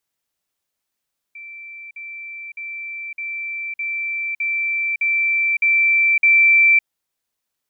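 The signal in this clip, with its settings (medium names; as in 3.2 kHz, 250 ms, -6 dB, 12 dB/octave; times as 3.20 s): level ladder 2.34 kHz -33.5 dBFS, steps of 3 dB, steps 9, 0.56 s 0.05 s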